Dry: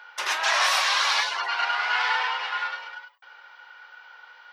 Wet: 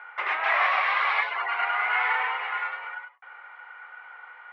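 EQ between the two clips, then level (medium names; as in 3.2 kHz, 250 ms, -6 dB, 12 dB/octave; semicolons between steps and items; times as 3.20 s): dynamic bell 1.2 kHz, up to -5 dB, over -34 dBFS, Q 0.71; cabinet simulation 230–2500 Hz, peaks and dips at 440 Hz +4 dB, 740 Hz +7 dB, 1.2 kHz +9 dB, 2.1 kHz +10 dB; -1.5 dB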